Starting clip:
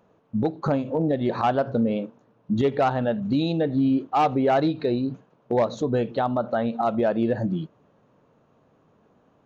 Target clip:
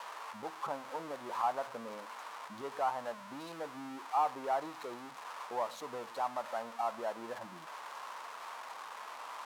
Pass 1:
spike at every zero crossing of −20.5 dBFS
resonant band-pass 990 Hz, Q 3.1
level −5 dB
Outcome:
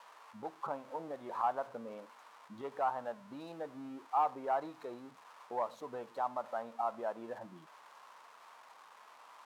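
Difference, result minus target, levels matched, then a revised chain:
spike at every zero crossing: distortion −11 dB
spike at every zero crossing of −9 dBFS
resonant band-pass 990 Hz, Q 3.1
level −5 dB

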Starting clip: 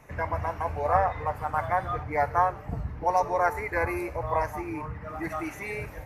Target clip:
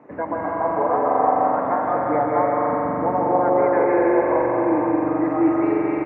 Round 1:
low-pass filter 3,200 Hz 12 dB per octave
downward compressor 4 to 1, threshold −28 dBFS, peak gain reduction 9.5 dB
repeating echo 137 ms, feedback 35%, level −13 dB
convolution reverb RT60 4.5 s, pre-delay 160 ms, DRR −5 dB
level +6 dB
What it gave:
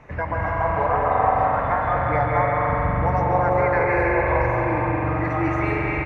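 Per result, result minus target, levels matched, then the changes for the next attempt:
4,000 Hz band +15.5 dB; 250 Hz band −5.5 dB
change: low-pass filter 1,100 Hz 12 dB per octave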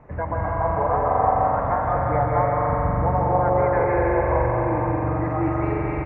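250 Hz band −4.5 dB
add after downward compressor: high-pass with resonance 280 Hz, resonance Q 2.5

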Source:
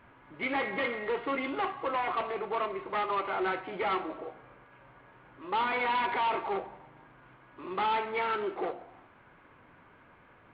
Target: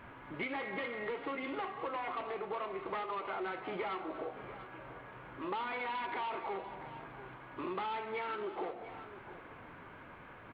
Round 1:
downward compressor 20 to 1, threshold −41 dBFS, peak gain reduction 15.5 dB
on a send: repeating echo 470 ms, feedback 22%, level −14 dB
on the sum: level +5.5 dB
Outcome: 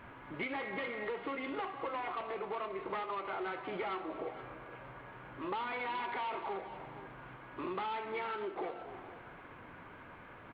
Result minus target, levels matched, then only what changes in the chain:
echo 221 ms early
change: repeating echo 691 ms, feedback 22%, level −14 dB

